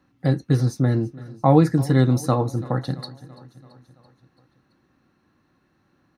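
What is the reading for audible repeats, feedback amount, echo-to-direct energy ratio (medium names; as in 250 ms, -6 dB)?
4, 60%, -18.0 dB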